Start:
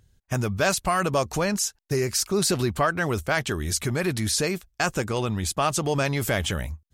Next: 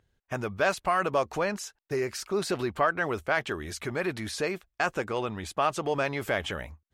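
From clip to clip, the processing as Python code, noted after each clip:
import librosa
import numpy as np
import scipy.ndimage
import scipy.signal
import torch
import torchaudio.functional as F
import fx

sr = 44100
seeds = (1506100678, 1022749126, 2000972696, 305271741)

y = fx.bass_treble(x, sr, bass_db=-11, treble_db=-14)
y = y * librosa.db_to_amplitude(-1.5)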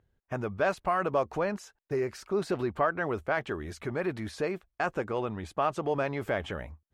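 y = fx.high_shelf(x, sr, hz=2200.0, db=-12.0)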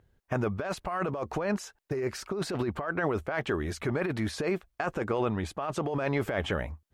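y = fx.over_compress(x, sr, threshold_db=-32.0, ratio=-1.0)
y = y * librosa.db_to_amplitude(3.0)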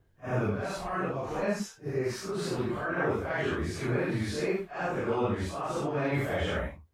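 y = fx.phase_scramble(x, sr, seeds[0], window_ms=200)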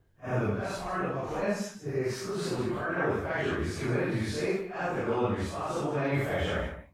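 y = x + 10.0 ** (-12.0 / 20.0) * np.pad(x, (int(151 * sr / 1000.0), 0))[:len(x)]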